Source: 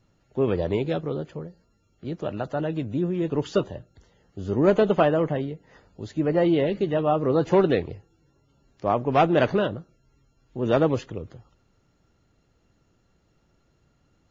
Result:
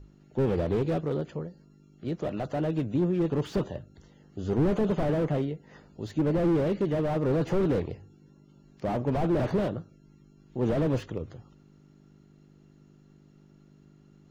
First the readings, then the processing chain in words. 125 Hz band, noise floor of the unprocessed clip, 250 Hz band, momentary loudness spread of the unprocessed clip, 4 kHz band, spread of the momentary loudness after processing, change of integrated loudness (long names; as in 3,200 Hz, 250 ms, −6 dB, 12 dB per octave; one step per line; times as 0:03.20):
0.0 dB, −67 dBFS, −2.5 dB, 18 LU, −8.0 dB, 14 LU, −4.5 dB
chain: hum with harmonics 50 Hz, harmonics 8, −45 dBFS −9 dB per octave
mains-hum notches 50/100 Hz
slew-rate limiting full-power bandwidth 27 Hz